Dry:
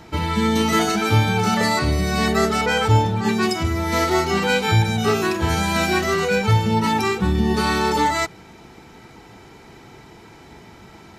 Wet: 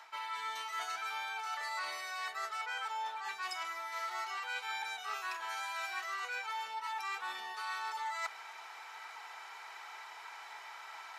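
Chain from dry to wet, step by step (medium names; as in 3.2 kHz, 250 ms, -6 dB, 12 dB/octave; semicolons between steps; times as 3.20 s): high-pass 940 Hz 24 dB/octave; treble shelf 2.4 kHz -9.5 dB; reverse; compression 6:1, threshold -43 dBFS, peak gain reduction 20.5 dB; reverse; trim +4.5 dB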